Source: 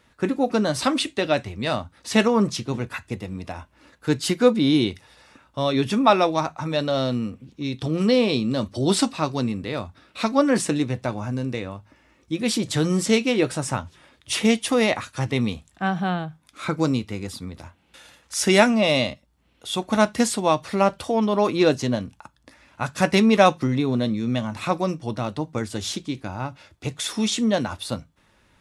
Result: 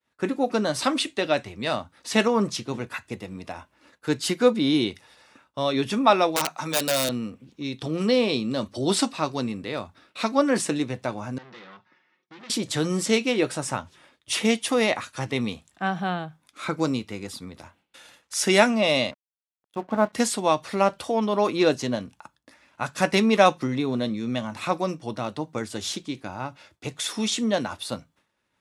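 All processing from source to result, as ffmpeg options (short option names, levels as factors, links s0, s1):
-filter_complex "[0:a]asettb=1/sr,asplit=3[s0][s1][s2];[s0]atrim=end=6.364[s3];[s1]atrim=start=6.36:end=7.09,asetpts=PTS-STARTPTS,afade=t=in:d=0.004:c=qsin,afade=t=out:st=0.726:d=0.004:c=qsin,highpass=f=140:w=0.5412,highpass=f=140:w=1.3066,highshelf=f=2200:g=9.5,aeval=exprs='(mod(4.73*val(0)+1,2)-1)/4.73':c=same[s4];[s2]atrim=start=7.086[s5];[s3][s4]acrossfade=d=0.004:c1=hsin:c2=qsin[s6];[s6][s5]acrossfade=d=0.004:c1=qsin:c2=hsin,asettb=1/sr,asplit=3[s7][s8][s9];[s7]atrim=end=11.384[s10];[s8]atrim=start=11.38:end=12.5,asetpts=PTS-STARTPTS,afade=t=in:d=0.004:c=qsin,afade=t=out:st=1.116:d=0.004:c=qsin,aecho=1:1:5.5:0.51,atrim=end_sample=49392,aeval=exprs='(tanh(100*val(0)+0.35)-tanh(0.35))/100':c=same,highpass=f=140:w=0.5412,highpass=f=140:w=1.3066,equalizer=f=210:t=q:w=4:g=-4,equalizer=f=310:t=q:w=4:g=-3,equalizer=f=580:t=q:w=4:g=-7,equalizer=f=1300:t=q:w=4:g=4,equalizer=f=1900:t=q:w=4:g=6,equalizer=f=3500:t=q:w=4:g=3,lowpass=f=5100:w=0.5412,lowpass=f=5100:w=1.3066[s11];[s9]atrim=start=12.496[s12];[s10][s11]acrossfade=d=0.004:c1=hsin:c2=qsin[s13];[s13][s12]acrossfade=d=0.004:c1=qsin:c2=hsin,asettb=1/sr,asplit=3[s14][s15][s16];[s14]atrim=end=19.114[s17];[s15]atrim=start=19.11:end=20.13,asetpts=PTS-STARTPTS,afade=t=in:d=0.004:c=qsin,afade=t=out:st=1.016:d=0.004:c=qsin,lowpass=1300,bandreject=f=60:t=h:w=6,bandreject=f=120:t=h:w=6,bandreject=f=180:t=h:w=6,aeval=exprs='sgn(val(0))*max(abs(val(0))-0.00841,0)':c=same[s18];[s16]atrim=start=20.126[s19];[s17][s18]acrossfade=d=0.004:c1=hsin:c2=qsin[s20];[s20][s19]acrossfade=d=0.004:c1=qsin:c2=hsin,agate=range=0.0224:threshold=0.00316:ratio=3:detection=peak,highpass=f=220:p=1,volume=0.891"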